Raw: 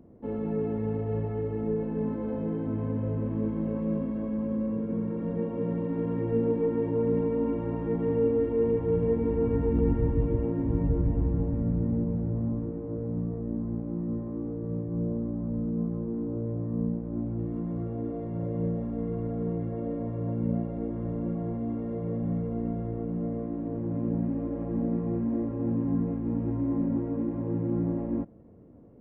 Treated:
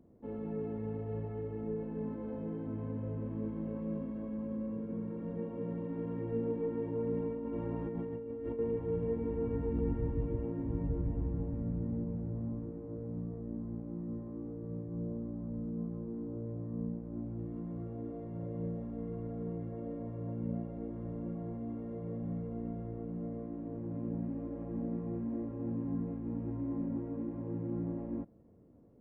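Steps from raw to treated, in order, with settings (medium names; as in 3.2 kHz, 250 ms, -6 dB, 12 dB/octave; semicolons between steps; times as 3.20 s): 7.32–8.59 s: compressor with a negative ratio -30 dBFS, ratio -1; trim -8.5 dB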